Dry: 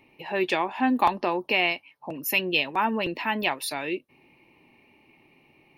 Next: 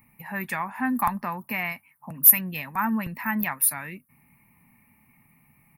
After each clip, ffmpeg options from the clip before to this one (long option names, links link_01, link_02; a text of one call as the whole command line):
ffmpeg -i in.wav -filter_complex "[0:a]firequalizer=gain_entry='entry(220,0);entry(330,-24);entry(840,-10);entry(1200,-3);entry(2000,-4);entry(3000,-24);entry(11000,14)':delay=0.05:min_phase=1,asplit=2[link_01][link_02];[link_02]acontrast=71,volume=1dB[link_03];[link_01][link_03]amix=inputs=2:normalize=0,volume=-5.5dB" out.wav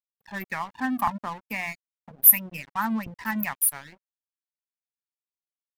ffmpeg -i in.wav -af "bandreject=frequency=60:width_type=h:width=6,bandreject=frequency=120:width_type=h:width=6,bandreject=frequency=180:width_type=h:width=6,bandreject=frequency=240:width_type=h:width=6,afftfilt=real='re*gte(hypot(re,im),0.0355)':imag='im*gte(hypot(re,im),0.0355)':win_size=1024:overlap=0.75,aeval=exprs='sgn(val(0))*max(abs(val(0))-0.0106,0)':channel_layout=same" out.wav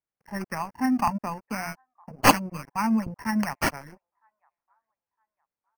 ffmpeg -i in.wav -filter_complex "[0:a]acrossover=split=850|970[link_01][link_02][link_03];[link_01]acontrast=89[link_04];[link_02]aecho=1:1:961|1922|2883:0.126|0.039|0.0121[link_05];[link_03]acrusher=samples=12:mix=1:aa=0.000001[link_06];[link_04][link_05][link_06]amix=inputs=3:normalize=0,volume=-2.5dB" out.wav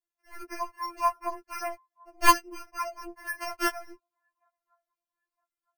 ffmpeg -i in.wav -af "afftfilt=real='re*4*eq(mod(b,16),0)':imag='im*4*eq(mod(b,16),0)':win_size=2048:overlap=0.75" out.wav